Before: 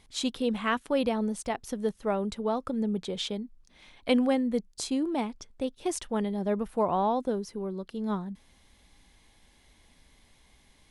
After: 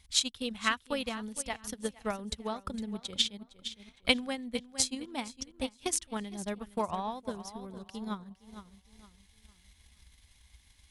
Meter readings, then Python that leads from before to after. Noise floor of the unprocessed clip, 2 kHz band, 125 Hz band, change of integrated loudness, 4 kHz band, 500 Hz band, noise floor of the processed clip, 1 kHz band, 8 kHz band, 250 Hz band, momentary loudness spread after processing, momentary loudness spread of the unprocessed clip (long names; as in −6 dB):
−62 dBFS, +2.0 dB, −7.5 dB, −4.5 dB, +5.5 dB, −9.0 dB, −65 dBFS, −6.0 dB, +6.5 dB, −8.5 dB, 13 LU, 10 LU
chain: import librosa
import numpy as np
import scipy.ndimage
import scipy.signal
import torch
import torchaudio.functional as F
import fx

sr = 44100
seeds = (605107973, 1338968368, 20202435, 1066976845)

p1 = fx.tone_stack(x, sr, knobs='5-5-5')
p2 = p1 + fx.echo_feedback(p1, sr, ms=460, feedback_pct=35, wet_db=-11.0, dry=0)
p3 = fx.transient(p2, sr, attack_db=10, sustain_db=-10)
p4 = fx.peak_eq(p3, sr, hz=65.0, db=12.5, octaves=1.3)
y = p4 * 10.0 ** (6.5 / 20.0)